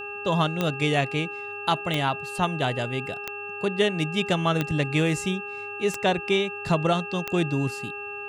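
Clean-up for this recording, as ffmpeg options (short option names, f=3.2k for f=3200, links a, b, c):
-af "adeclick=t=4,bandreject=f=408.9:t=h:w=4,bandreject=f=817.8:t=h:w=4,bandreject=f=1.2267k:t=h:w=4,bandreject=f=1.6356k:t=h:w=4,bandreject=f=2.7k:w=30"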